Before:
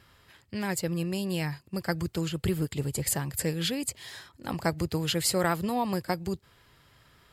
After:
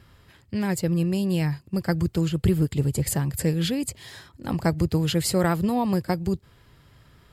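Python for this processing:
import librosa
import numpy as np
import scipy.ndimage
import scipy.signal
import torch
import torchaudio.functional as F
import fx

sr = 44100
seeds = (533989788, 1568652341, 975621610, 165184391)

y = fx.low_shelf(x, sr, hz=400.0, db=9.5)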